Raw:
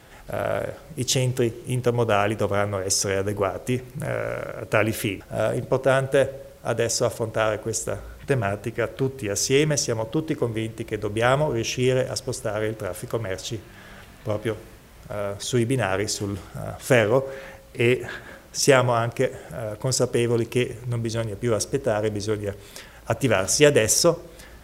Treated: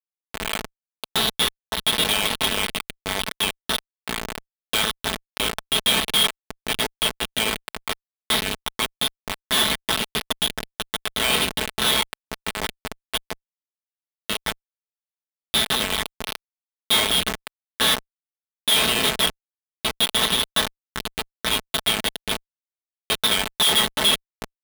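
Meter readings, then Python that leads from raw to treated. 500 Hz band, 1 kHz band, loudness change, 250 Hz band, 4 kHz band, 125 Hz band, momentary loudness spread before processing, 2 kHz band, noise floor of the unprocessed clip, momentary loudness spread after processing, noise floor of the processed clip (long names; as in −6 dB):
−11.0 dB, +0.5 dB, +2.0 dB, −6.5 dB, +12.5 dB, −13.0 dB, 14 LU, +3.0 dB, −46 dBFS, 13 LU, below −85 dBFS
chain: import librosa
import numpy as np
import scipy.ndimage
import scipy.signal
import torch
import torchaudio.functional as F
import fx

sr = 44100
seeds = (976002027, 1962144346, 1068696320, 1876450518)

p1 = fx.spec_trails(x, sr, decay_s=0.38)
p2 = p1 + fx.echo_multitap(p1, sr, ms=(315, 355), db=(-17.0, -9.0), dry=0)
p3 = fx.freq_invert(p2, sr, carrier_hz=3800)
p4 = fx.high_shelf(p3, sr, hz=2300.0, db=9.0)
p5 = fx.schmitt(p4, sr, flips_db=-9.5)
p6 = fx.highpass(p5, sr, hz=140.0, slope=6)
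p7 = fx.low_shelf(p6, sr, hz=340.0, db=-11.0)
y = p7 + 0.5 * np.pad(p7, (int(4.6 * sr / 1000.0), 0))[:len(p7)]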